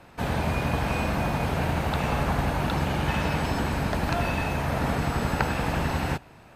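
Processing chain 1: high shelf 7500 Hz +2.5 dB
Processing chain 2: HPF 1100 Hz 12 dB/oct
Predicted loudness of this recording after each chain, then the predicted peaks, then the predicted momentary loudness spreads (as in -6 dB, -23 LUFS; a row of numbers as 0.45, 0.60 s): -27.0, -33.0 LUFS; -8.5, -10.5 dBFS; 1, 3 LU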